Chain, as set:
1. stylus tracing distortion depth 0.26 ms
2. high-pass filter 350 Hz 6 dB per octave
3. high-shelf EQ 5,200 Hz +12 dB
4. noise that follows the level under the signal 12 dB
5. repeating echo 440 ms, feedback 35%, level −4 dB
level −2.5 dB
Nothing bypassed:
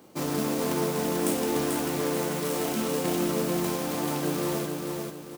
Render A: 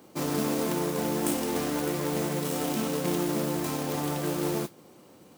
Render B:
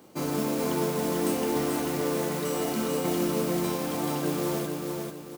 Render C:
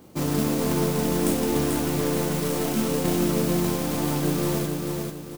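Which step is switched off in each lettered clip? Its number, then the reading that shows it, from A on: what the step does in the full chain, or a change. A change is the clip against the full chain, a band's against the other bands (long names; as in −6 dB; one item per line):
5, change in momentary loudness spread −2 LU
1, change in crest factor −3.5 dB
2, change in crest factor −1.5 dB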